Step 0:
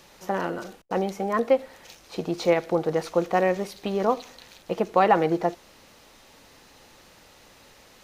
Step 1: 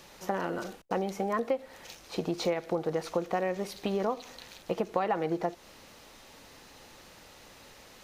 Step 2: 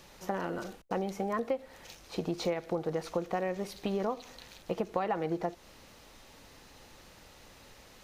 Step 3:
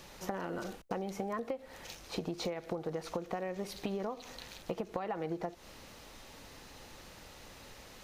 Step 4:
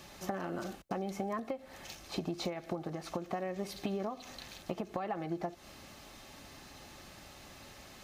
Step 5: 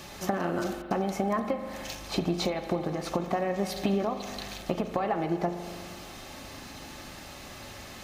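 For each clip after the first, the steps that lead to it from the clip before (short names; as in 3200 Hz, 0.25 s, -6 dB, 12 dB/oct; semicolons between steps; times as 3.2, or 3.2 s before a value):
compressor 4:1, threshold -27 dBFS, peak gain reduction 12 dB
low shelf 120 Hz +7.5 dB; gain -3 dB
compressor 6:1, threshold -36 dBFS, peak gain reduction 10 dB; gain +2.5 dB
notch comb 480 Hz; gain +1.5 dB
spring tank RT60 2 s, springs 40 ms, chirp 45 ms, DRR 7.5 dB; gain +8 dB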